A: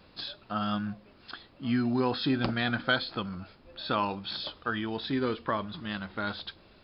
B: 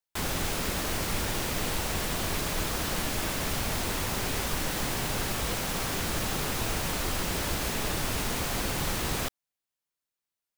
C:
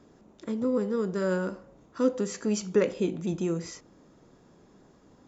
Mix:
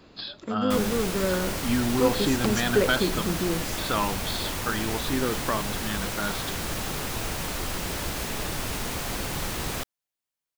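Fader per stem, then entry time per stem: +2.0 dB, -0.5 dB, +1.0 dB; 0.00 s, 0.55 s, 0.00 s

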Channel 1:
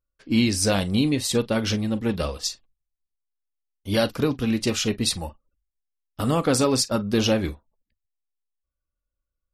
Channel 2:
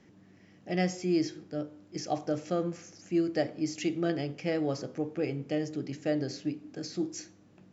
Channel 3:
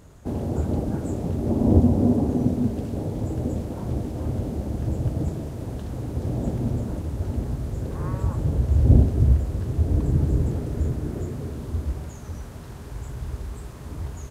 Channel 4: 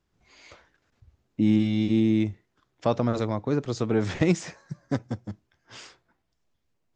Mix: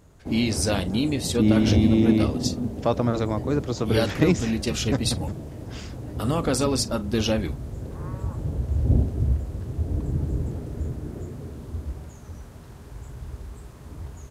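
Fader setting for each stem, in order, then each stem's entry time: -3.0 dB, -19.0 dB, -5.0 dB, +1.5 dB; 0.00 s, 0.00 s, 0.00 s, 0.00 s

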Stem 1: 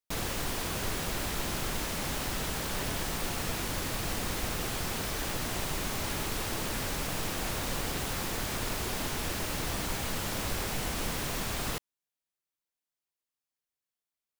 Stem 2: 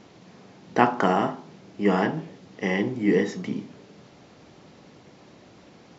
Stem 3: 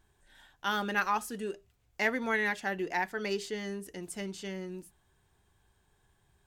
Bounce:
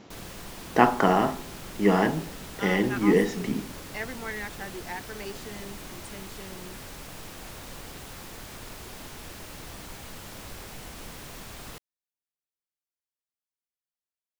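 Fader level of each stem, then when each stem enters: -8.5 dB, +0.5 dB, -6.0 dB; 0.00 s, 0.00 s, 1.95 s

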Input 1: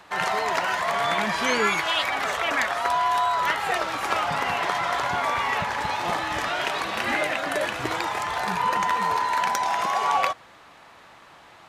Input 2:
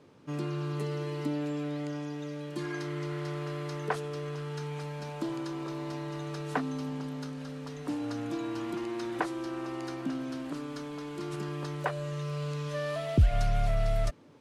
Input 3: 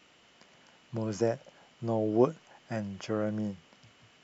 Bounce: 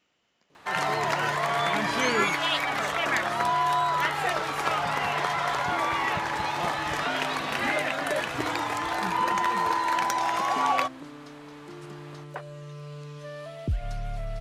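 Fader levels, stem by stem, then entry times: -2.0 dB, -6.0 dB, -11.5 dB; 0.55 s, 0.50 s, 0.00 s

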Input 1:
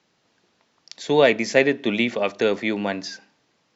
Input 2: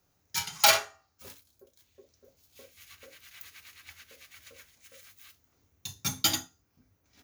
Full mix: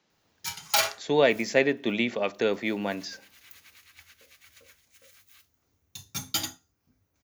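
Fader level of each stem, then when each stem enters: -5.0 dB, -3.0 dB; 0.00 s, 0.10 s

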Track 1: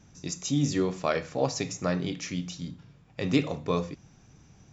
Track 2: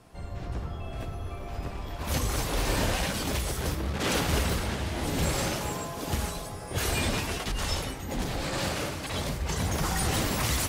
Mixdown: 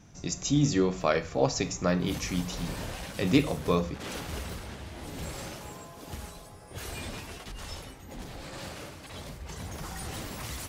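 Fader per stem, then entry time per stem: +1.5 dB, -10.5 dB; 0.00 s, 0.00 s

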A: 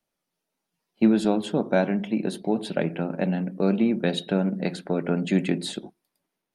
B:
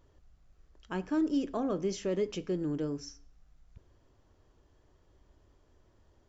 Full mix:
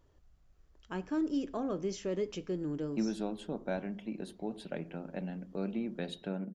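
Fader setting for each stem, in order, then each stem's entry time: -14.0 dB, -3.0 dB; 1.95 s, 0.00 s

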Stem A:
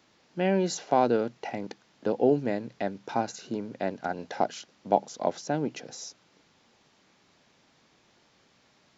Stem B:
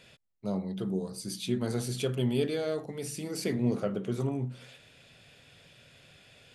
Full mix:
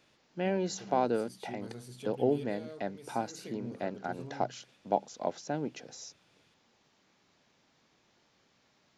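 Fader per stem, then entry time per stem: -5.5 dB, -14.5 dB; 0.00 s, 0.00 s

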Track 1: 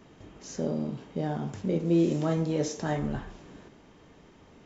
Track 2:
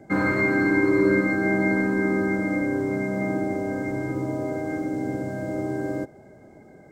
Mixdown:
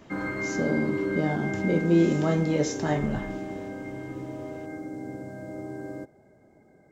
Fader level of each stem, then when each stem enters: +3.0 dB, -9.0 dB; 0.00 s, 0.00 s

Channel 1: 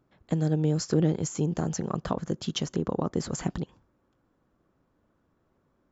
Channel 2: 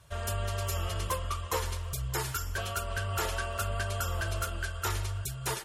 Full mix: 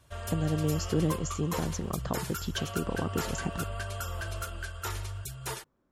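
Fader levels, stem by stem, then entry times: -4.0 dB, -3.5 dB; 0.00 s, 0.00 s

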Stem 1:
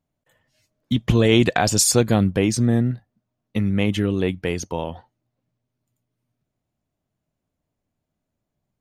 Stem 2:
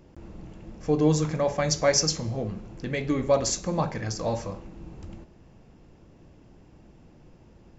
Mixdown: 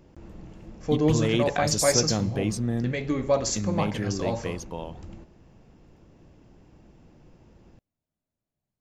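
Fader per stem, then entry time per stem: -9.0 dB, -1.0 dB; 0.00 s, 0.00 s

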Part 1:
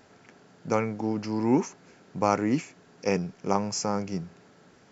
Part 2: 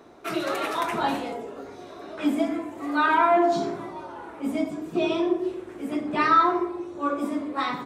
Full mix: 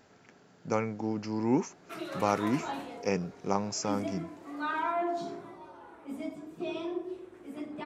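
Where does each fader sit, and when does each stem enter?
-4.0 dB, -11.5 dB; 0.00 s, 1.65 s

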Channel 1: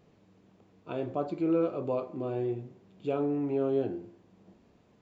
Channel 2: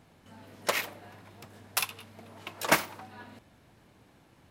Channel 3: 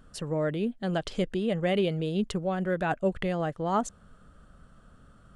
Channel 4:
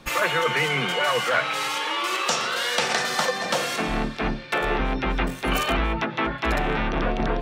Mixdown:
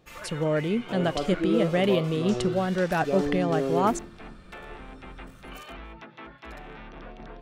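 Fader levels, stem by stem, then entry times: +1.0 dB, -19.5 dB, +3.0 dB, -19.0 dB; 0.00 s, 1.15 s, 0.10 s, 0.00 s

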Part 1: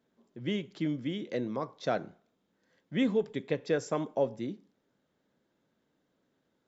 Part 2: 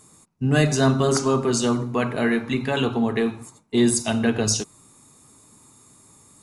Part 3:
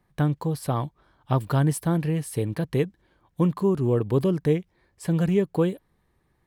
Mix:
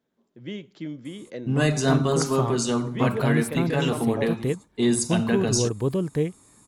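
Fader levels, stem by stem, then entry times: -2.5 dB, -3.0 dB, -2.5 dB; 0.00 s, 1.05 s, 1.70 s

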